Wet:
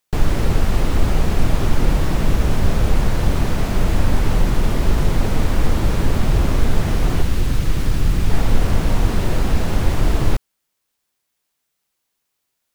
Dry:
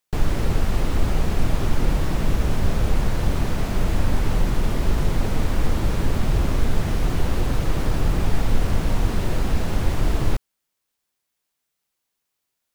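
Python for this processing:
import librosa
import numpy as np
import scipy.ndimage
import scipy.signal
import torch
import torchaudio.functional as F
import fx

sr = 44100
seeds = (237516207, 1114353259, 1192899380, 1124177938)

y = fx.peak_eq(x, sr, hz=680.0, db=-8.0, octaves=2.1, at=(7.22, 8.3))
y = y * 10.0 ** (4.0 / 20.0)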